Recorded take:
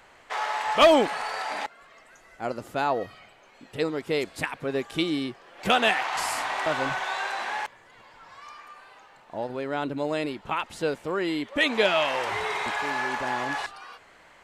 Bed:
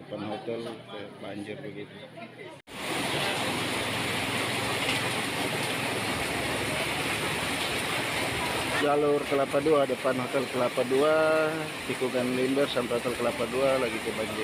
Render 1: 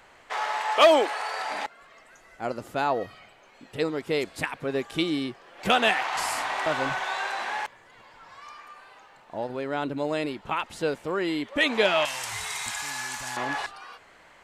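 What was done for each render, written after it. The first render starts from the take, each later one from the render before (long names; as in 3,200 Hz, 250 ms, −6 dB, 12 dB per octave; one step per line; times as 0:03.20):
0:00.61–0:01.40: high-pass filter 330 Hz 24 dB per octave
0:12.05–0:13.37: drawn EQ curve 100 Hz 0 dB, 180 Hz −6 dB, 460 Hz −20 dB, 690 Hz −11 dB, 3,200 Hz −1 dB, 7,400 Hz +14 dB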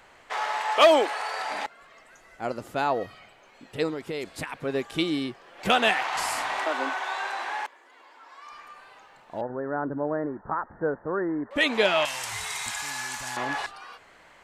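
0:03.93–0:04.56: downward compressor, threshold −28 dBFS
0:06.64–0:08.52: Chebyshev high-pass with heavy ripple 250 Hz, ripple 3 dB
0:09.41–0:11.51: Butterworth low-pass 1,800 Hz 96 dB per octave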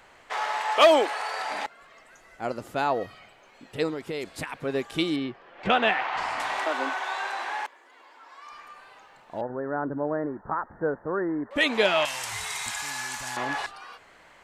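0:05.16–0:06.40: low-pass filter 3,000 Hz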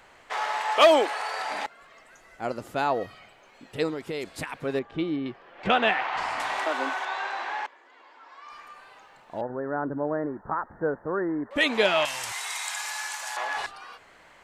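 0:04.79–0:05.26: head-to-tape spacing loss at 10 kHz 36 dB
0:07.05–0:08.50: moving average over 4 samples
0:12.32–0:13.57: high-pass filter 540 Hz 24 dB per octave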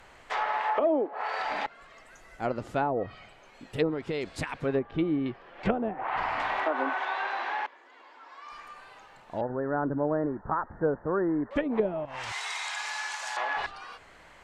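treble cut that deepens with the level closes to 410 Hz, closed at −19.5 dBFS
low-shelf EQ 110 Hz +9.5 dB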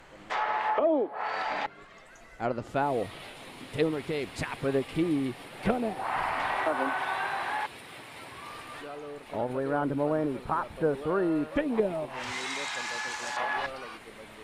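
mix in bed −17 dB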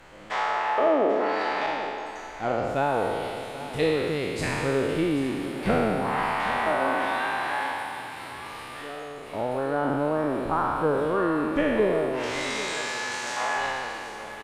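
peak hold with a decay on every bin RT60 2.17 s
single-tap delay 787 ms −14 dB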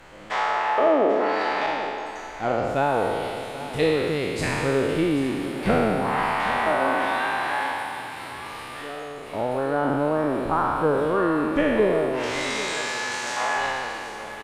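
level +2.5 dB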